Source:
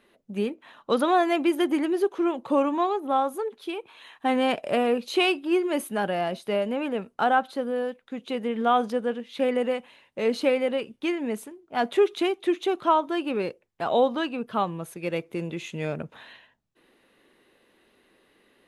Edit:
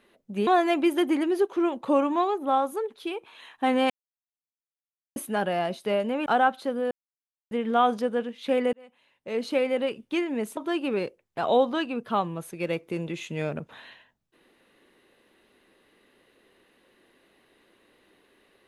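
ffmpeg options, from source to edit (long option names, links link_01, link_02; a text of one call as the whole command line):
ffmpeg -i in.wav -filter_complex "[0:a]asplit=9[link_01][link_02][link_03][link_04][link_05][link_06][link_07][link_08][link_09];[link_01]atrim=end=0.472[link_10];[link_02]atrim=start=1.088:end=4.52,asetpts=PTS-STARTPTS,afade=type=out:start_time=3.428:duration=0.004:curve=hsin[link_11];[link_03]atrim=start=4.52:end=5.78,asetpts=PTS-STARTPTS,volume=0[link_12];[link_04]atrim=start=5.78:end=6.882,asetpts=PTS-STARTPTS,afade=type=in:duration=0.004:curve=hsin[link_13];[link_05]atrim=start=7.168:end=7.82,asetpts=PTS-STARTPTS,afade=type=out:start_time=0.648:duration=0.004:curve=hsin[link_14];[link_06]atrim=start=7.82:end=8.42,asetpts=PTS-STARTPTS,volume=0[link_15];[link_07]atrim=start=8.42:end=9.64,asetpts=PTS-STARTPTS,afade=type=in:duration=0.004:curve=hsin,afade=type=out:start_time=1.216:duration=0.004:curve=hsin[link_16];[link_08]atrim=start=9.64:end=11.482,asetpts=PTS-STARTPTS,afade=type=in:duration=1.11[link_17];[link_09]atrim=start=12.998[link_18];[link_11][link_12][link_13]concat=n=3:v=0:a=1[link_19];[link_10][link_19]acrossfade=duration=0.004:curve1=hsin:curve2=hsin[link_20];[link_14][link_15][link_16][link_17]concat=n=4:v=0:a=1[link_21];[link_20][link_21]acrossfade=duration=0.004:curve1=hsin:curve2=hsin[link_22];[link_22][link_18]acrossfade=duration=0.004:curve1=hsin:curve2=hsin" out.wav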